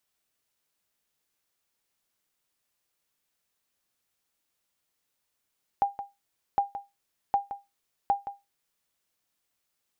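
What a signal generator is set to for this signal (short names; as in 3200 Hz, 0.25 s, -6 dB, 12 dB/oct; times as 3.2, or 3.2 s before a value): sonar ping 802 Hz, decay 0.21 s, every 0.76 s, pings 4, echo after 0.17 s, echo -12 dB -15.5 dBFS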